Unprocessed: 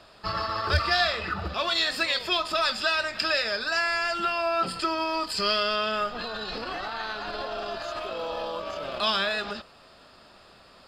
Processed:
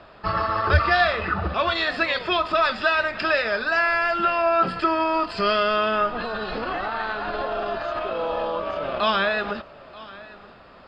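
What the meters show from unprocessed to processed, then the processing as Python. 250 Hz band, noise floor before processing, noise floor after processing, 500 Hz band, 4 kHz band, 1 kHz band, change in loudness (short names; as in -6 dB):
+6.5 dB, -54 dBFS, -47 dBFS, +6.5 dB, -2.5 dB, +6.5 dB, +4.0 dB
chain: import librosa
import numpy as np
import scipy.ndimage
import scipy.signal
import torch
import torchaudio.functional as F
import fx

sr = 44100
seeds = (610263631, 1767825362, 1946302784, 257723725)

y = scipy.signal.sosfilt(scipy.signal.butter(2, 2300.0, 'lowpass', fs=sr, output='sos'), x)
y = y + 10.0 ** (-20.0 / 20.0) * np.pad(y, (int(932 * sr / 1000.0), 0))[:len(y)]
y = y * 10.0 ** (6.5 / 20.0)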